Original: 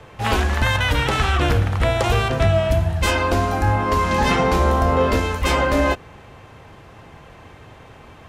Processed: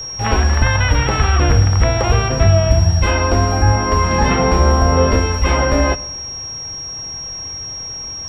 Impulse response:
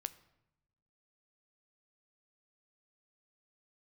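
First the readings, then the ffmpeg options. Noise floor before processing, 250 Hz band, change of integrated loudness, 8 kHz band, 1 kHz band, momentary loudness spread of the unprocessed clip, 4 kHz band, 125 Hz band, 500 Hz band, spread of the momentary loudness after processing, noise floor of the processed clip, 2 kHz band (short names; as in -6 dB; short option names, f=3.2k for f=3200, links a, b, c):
-44 dBFS, +3.0 dB, +3.0 dB, n/a, +2.0 dB, 3 LU, +6.0 dB, +6.5 dB, +2.5 dB, 12 LU, -28 dBFS, +1.5 dB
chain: -filter_complex "[0:a]acrossover=split=3000[a][b];[b]acompressor=threshold=-45dB:ratio=4:attack=1:release=60[c];[a][c]amix=inputs=2:normalize=0,asplit=2[d][e];[1:a]atrim=start_sample=2205,lowshelf=f=99:g=8.5[f];[e][f]afir=irnorm=-1:irlink=0,volume=12.5dB[g];[d][g]amix=inputs=2:normalize=0,aeval=exprs='val(0)+0.178*sin(2*PI*5600*n/s)':c=same,volume=-10.5dB"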